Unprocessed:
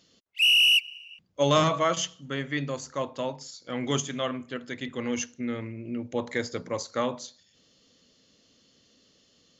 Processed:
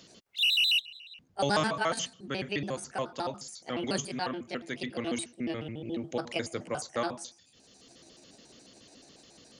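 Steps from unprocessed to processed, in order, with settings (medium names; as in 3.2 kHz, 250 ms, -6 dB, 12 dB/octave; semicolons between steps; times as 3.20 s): pitch shift switched off and on +5.5 st, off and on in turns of 71 ms; three bands compressed up and down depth 40%; trim -2.5 dB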